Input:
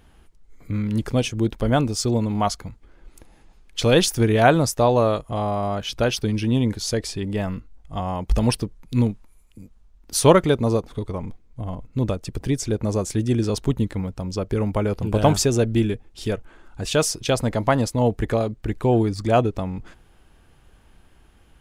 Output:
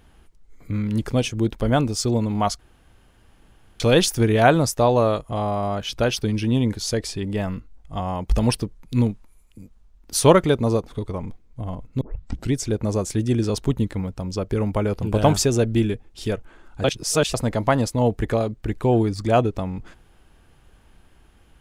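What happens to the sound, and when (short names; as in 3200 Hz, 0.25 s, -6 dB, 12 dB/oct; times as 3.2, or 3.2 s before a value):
2.59–3.8 room tone
12.01 tape start 0.52 s
16.84–17.34 reverse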